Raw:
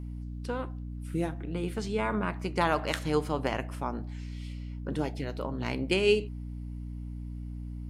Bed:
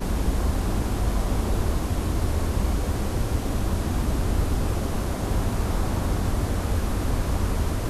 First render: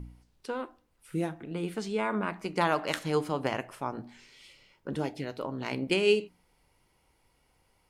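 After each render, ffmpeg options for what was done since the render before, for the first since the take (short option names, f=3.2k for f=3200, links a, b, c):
-af "bandreject=f=60:t=h:w=4,bandreject=f=120:t=h:w=4,bandreject=f=180:t=h:w=4,bandreject=f=240:t=h:w=4,bandreject=f=300:t=h:w=4"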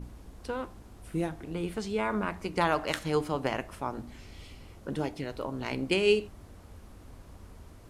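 -filter_complex "[1:a]volume=-25dB[a];[0:a][a]amix=inputs=2:normalize=0"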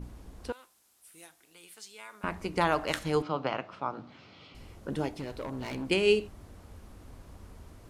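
-filter_complex "[0:a]asettb=1/sr,asplit=3[a][b][c];[a]atrim=end=0.524[d];[b]atrim=start=0.52:end=2.24,asetpts=PTS-STARTPTS,afade=t=in:d=0.004:c=qsin,afade=t=out:st=1.716:d=0.004:c=qsin,aderivative[e];[c]atrim=start=2.236[f];[d][e]acrossfade=d=0.004:c1=hsin:c2=qsin[g];[g][f]acrossfade=d=0.004:c1=qsin:c2=hsin,asettb=1/sr,asplit=3[h][i][j];[h]atrim=end=3.224[k];[i]atrim=start=3.22:end=4.55,asetpts=PTS-STARTPTS,afade=t=in:d=0.004:c=qsin,afade=t=out:st=1.326:d=0.004:c=qsin,highpass=f=130:w=0.5412,highpass=f=130:w=1.3066,equalizer=f=230:t=q:w=4:g=-6,equalizer=f=380:t=q:w=4:g=-5,equalizer=f=1.3k:t=q:w=4:g=6,equalizer=f=1.8k:t=q:w=4:g=-6,lowpass=f=4.6k:w=0.5412,lowpass=f=4.6k:w=1.3066[l];[j]atrim=start=4.546[m];[k][l]acrossfade=d=0.004:c1=hsin:c2=qsin[n];[n][m]acrossfade=d=0.004:c1=qsin:c2=hsin,asettb=1/sr,asplit=3[o][p][q];[o]atrim=end=5.154[r];[p]atrim=start=5.15:end=5.88,asetpts=PTS-STARTPTS,afade=t=in:d=0.004:c=qsin,afade=t=out:st=0.726:d=0.004:c=qsin,asoftclip=type=hard:threshold=-32dB[s];[q]atrim=start=5.876[t];[r][s]acrossfade=d=0.004:c1=hsin:c2=qsin[u];[u][t]acrossfade=d=0.004:c1=qsin:c2=hsin"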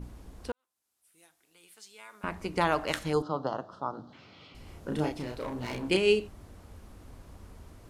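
-filter_complex "[0:a]asettb=1/sr,asplit=3[a][b][c];[a]atrim=end=3.134[d];[b]atrim=start=3.13:end=4.13,asetpts=PTS-STARTPTS,afade=t=in:d=0.004:c=qsin,afade=t=out:st=0.996:d=0.004:c=qsin,asuperstop=centerf=2300:order=4:qfactor=1[e];[c]atrim=start=4.126[f];[d][e]acrossfade=d=0.004:c1=hsin:c2=qsin[g];[g][f]acrossfade=d=0.004:c1=qsin:c2=hsin,asettb=1/sr,asplit=3[h][i][j];[h]atrim=end=4.634[k];[i]atrim=start=4.63:end=5.97,asetpts=PTS-STARTPTS,afade=t=in:d=0.004:c=qsin,afade=t=out:st=1.336:d=0.004:c=qsin,asplit=2[l][m];[m]adelay=33,volume=-3dB[n];[l][n]amix=inputs=2:normalize=0,atrim=end_sample=59094[o];[j]atrim=start=5.966[p];[k][o]acrossfade=d=0.004:c1=hsin:c2=qsin[q];[q][p]acrossfade=d=0.004:c1=qsin:c2=hsin,asplit=2[r][s];[r]atrim=end=0.52,asetpts=PTS-STARTPTS,afade=t=out:st=0.516:d=0.004:c=hsin[t];[s]atrim=start=0.52,asetpts=PTS-STARTPTS,afade=t=in:d=2[u];[t][u]concat=n=2:v=0:a=1"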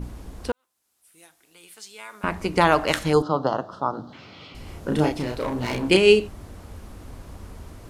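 -af "volume=9dB,alimiter=limit=-3dB:level=0:latency=1"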